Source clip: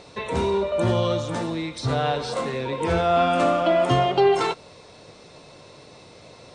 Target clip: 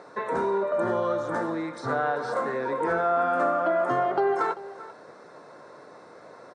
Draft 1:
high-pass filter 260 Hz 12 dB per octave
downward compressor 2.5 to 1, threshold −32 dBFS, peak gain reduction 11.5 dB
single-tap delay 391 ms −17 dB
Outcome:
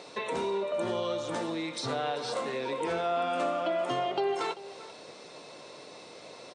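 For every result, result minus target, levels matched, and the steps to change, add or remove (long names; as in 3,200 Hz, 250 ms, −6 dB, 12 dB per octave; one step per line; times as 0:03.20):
4,000 Hz band +16.5 dB; downward compressor: peak gain reduction +4.5 dB
add after high-pass filter: high shelf with overshoot 2,100 Hz −10 dB, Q 3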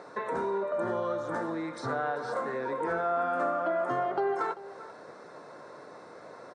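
downward compressor: peak gain reduction +5 dB
change: downward compressor 2.5 to 1, threshold −23.5 dBFS, peak gain reduction 7 dB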